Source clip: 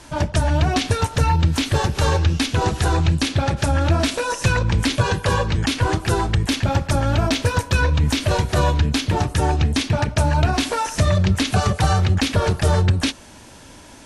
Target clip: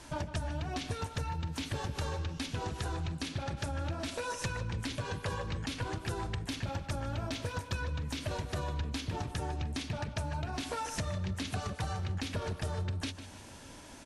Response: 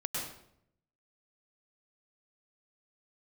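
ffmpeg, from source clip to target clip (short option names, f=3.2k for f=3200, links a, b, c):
-filter_complex "[0:a]acompressor=threshold=-26dB:ratio=6,asplit=2[a][b];[b]adelay=152,lowpass=f=4.6k:p=1,volume=-11.5dB,asplit=2[c][d];[d]adelay=152,lowpass=f=4.6k:p=1,volume=0.47,asplit=2[e][f];[f]adelay=152,lowpass=f=4.6k:p=1,volume=0.47,asplit=2[g][h];[h]adelay=152,lowpass=f=4.6k:p=1,volume=0.47,asplit=2[i][j];[j]adelay=152,lowpass=f=4.6k:p=1,volume=0.47[k];[c][e][g][i][k]amix=inputs=5:normalize=0[l];[a][l]amix=inputs=2:normalize=0,volume=-7.5dB"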